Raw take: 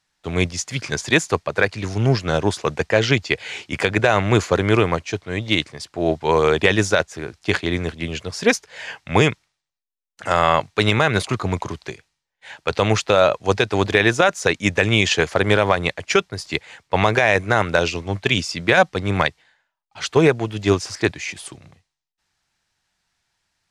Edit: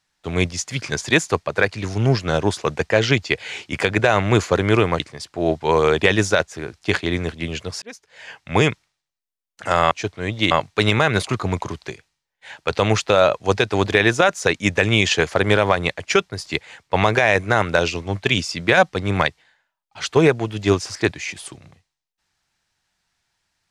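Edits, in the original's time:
5–5.6 move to 10.51
8.42–9.31 fade in

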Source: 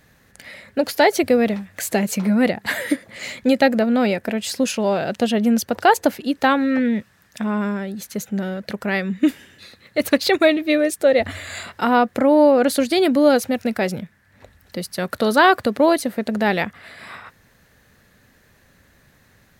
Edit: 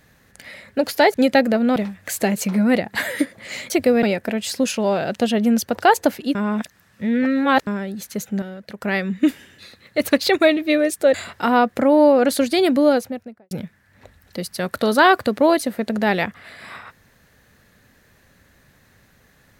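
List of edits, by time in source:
1.14–1.47 swap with 3.41–4.03
6.35–7.67 reverse
8.42–8.82 gain -7.5 dB
11.14–11.53 cut
13.1–13.9 studio fade out

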